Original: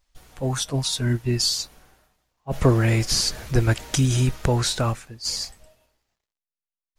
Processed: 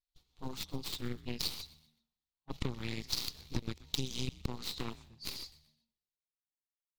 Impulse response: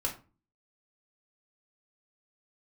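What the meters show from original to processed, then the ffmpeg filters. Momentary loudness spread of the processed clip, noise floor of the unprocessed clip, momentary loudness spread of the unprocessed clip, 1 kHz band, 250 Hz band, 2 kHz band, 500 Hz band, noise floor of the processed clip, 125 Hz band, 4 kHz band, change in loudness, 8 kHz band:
9 LU, under -85 dBFS, 9 LU, -18.0 dB, -16.0 dB, -16.5 dB, -20.0 dB, under -85 dBFS, -21.5 dB, -13.0 dB, -17.0 dB, -19.0 dB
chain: -filter_complex "[0:a]agate=range=0.355:threshold=0.00631:ratio=16:detection=peak,aeval=exprs='0.596*(cos(1*acos(clip(val(0)/0.596,-1,1)))-cos(1*PI/2))+0.188*(cos(4*acos(clip(val(0)/0.596,-1,1)))-cos(4*PI/2))+0.106*(cos(7*acos(clip(val(0)/0.596,-1,1)))-cos(7*PI/2))':c=same,acompressor=threshold=0.0631:ratio=12,equalizer=f=630:t=o:w=0.67:g=-10,equalizer=f=1600:t=o:w=0.67:g=-10,equalizer=f=4000:t=o:w=0.67:g=12,equalizer=f=10000:t=o:w=0.67:g=-9,asplit=2[s0][s1];[s1]asplit=3[s2][s3][s4];[s2]adelay=125,afreqshift=-77,volume=0.112[s5];[s3]adelay=250,afreqshift=-154,volume=0.0427[s6];[s4]adelay=375,afreqshift=-231,volume=0.0162[s7];[s5][s6][s7]amix=inputs=3:normalize=0[s8];[s0][s8]amix=inputs=2:normalize=0,volume=0.473"

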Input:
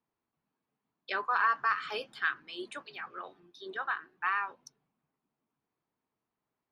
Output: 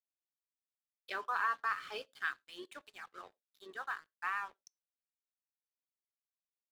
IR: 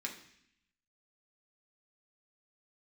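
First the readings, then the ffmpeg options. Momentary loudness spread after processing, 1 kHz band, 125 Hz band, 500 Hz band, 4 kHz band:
17 LU, -6.5 dB, no reading, -7.0 dB, -6.5 dB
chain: -filter_complex "[0:a]aeval=exprs='sgn(val(0))*max(abs(val(0))-0.00282,0)':c=same,asplit=2[s0][s1];[1:a]atrim=start_sample=2205,afade=t=out:st=0.26:d=0.01,atrim=end_sample=11907,asetrate=79380,aresample=44100[s2];[s1][s2]afir=irnorm=-1:irlink=0,volume=0.2[s3];[s0][s3]amix=inputs=2:normalize=0,volume=0.501"

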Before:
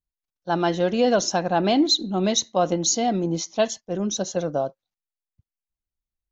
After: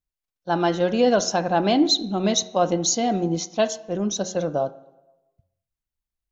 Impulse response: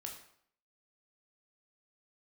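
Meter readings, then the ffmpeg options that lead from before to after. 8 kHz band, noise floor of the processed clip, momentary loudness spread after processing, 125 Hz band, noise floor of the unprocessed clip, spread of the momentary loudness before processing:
no reading, under -85 dBFS, 8 LU, 0.0 dB, under -85 dBFS, 8 LU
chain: -filter_complex "[0:a]bandreject=f=91.52:t=h:w=4,bandreject=f=183.04:t=h:w=4,bandreject=f=274.56:t=h:w=4,bandreject=f=366.08:t=h:w=4,bandreject=f=457.6:t=h:w=4,bandreject=f=549.12:t=h:w=4,bandreject=f=640.64:t=h:w=4,bandreject=f=732.16:t=h:w=4,bandreject=f=823.68:t=h:w=4,bandreject=f=915.2:t=h:w=4,bandreject=f=1006.72:t=h:w=4,bandreject=f=1098.24:t=h:w=4,bandreject=f=1189.76:t=h:w=4,bandreject=f=1281.28:t=h:w=4,bandreject=f=1372.8:t=h:w=4,bandreject=f=1464.32:t=h:w=4,bandreject=f=1555.84:t=h:w=4,bandreject=f=1647.36:t=h:w=4,asplit=2[s0][s1];[1:a]atrim=start_sample=2205,asetrate=25137,aresample=44100,lowpass=3700[s2];[s1][s2]afir=irnorm=-1:irlink=0,volume=0.168[s3];[s0][s3]amix=inputs=2:normalize=0"

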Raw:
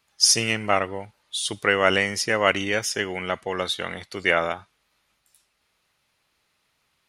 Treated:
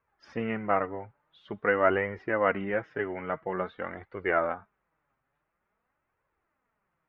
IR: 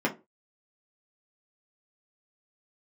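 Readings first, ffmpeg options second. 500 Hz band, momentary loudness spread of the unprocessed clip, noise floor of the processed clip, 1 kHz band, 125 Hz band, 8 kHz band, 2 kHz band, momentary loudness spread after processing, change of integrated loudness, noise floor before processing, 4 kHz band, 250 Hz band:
-3.0 dB, 13 LU, -81 dBFS, -4.0 dB, -6.5 dB, under -40 dB, -8.5 dB, 14 LU, -7.0 dB, -71 dBFS, under -25 dB, -3.5 dB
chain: -af "lowpass=f=1700:w=0.5412,lowpass=f=1700:w=1.3066,flanger=delay=1.8:depth=6:regen=31:speed=0.48:shape=triangular"

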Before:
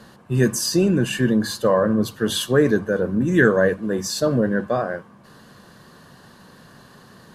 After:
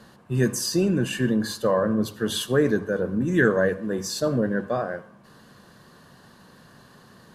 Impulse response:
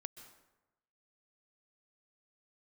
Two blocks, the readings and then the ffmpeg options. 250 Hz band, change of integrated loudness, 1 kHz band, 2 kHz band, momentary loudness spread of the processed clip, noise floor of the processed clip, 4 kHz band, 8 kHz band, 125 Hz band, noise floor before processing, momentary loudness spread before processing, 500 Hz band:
-4.0 dB, -4.0 dB, -4.0 dB, -4.0 dB, 7 LU, -53 dBFS, -4.0 dB, -4.0 dB, -4.0 dB, -49 dBFS, 8 LU, -4.0 dB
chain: -filter_complex "[0:a]asplit=2[s0][s1];[1:a]atrim=start_sample=2205,asetrate=79380,aresample=44100[s2];[s1][s2]afir=irnorm=-1:irlink=0,volume=1.33[s3];[s0][s3]amix=inputs=2:normalize=0,volume=0.447"

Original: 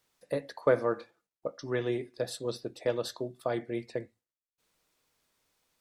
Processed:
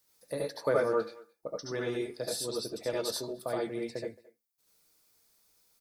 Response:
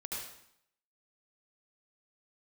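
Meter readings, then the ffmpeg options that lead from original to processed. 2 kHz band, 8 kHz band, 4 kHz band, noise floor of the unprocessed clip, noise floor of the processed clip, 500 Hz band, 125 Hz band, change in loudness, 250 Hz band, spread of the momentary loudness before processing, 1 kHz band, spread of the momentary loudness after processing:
-0.5 dB, +7.5 dB, +4.5 dB, under -85 dBFS, -79 dBFS, -0.5 dB, -4.0 dB, -0.5 dB, -1.5 dB, 12 LU, 0.0 dB, 12 LU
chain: -filter_complex "[0:a]aexciter=amount=1.7:drive=8.3:freq=4200,asplit=2[s0][s1];[s1]adelay=220,highpass=300,lowpass=3400,asoftclip=type=hard:threshold=0.0794,volume=0.0891[s2];[s0][s2]amix=inputs=2:normalize=0[s3];[1:a]atrim=start_sample=2205,afade=t=out:st=0.15:d=0.01,atrim=end_sample=7056[s4];[s3][s4]afir=irnorm=-1:irlink=0,volume=1.12"

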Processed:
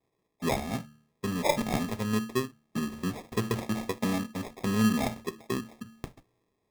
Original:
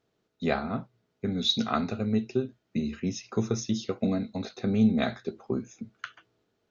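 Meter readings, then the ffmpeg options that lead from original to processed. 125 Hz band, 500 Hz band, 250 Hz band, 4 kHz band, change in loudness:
-1.0 dB, -1.0 dB, -2.0 dB, -6.5 dB, -1.5 dB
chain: -af "bandreject=f=75.35:t=h:w=4,bandreject=f=150.7:t=h:w=4,bandreject=f=226.05:t=h:w=4,bandreject=f=301.4:t=h:w=4,adynamicequalizer=threshold=0.00631:dfrequency=2800:dqfactor=0.99:tfrequency=2800:tqfactor=0.99:attack=5:release=100:ratio=0.375:range=2:mode=boostabove:tftype=bell,acrusher=samples=30:mix=1:aa=0.000001,volume=0.841"

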